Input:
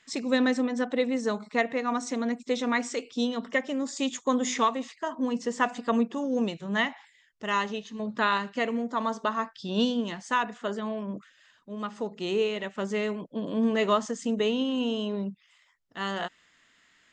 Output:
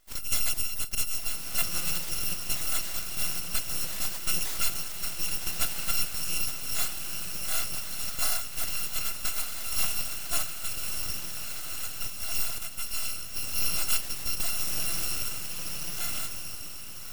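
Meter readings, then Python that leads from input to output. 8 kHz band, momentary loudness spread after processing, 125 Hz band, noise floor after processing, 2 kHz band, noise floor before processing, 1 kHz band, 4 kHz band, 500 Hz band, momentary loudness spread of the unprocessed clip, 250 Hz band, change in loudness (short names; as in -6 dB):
+12.0 dB, 6 LU, -1.0 dB, -37 dBFS, -5.5 dB, -64 dBFS, -13.0 dB, +3.0 dB, -20.0 dB, 8 LU, -21.0 dB, -1.0 dB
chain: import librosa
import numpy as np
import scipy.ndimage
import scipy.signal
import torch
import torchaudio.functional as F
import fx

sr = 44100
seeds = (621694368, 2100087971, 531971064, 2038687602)

y = fx.bit_reversed(x, sr, seeds[0], block=256)
y = fx.echo_diffused(y, sr, ms=1297, feedback_pct=42, wet_db=-5.5)
y = np.abs(y)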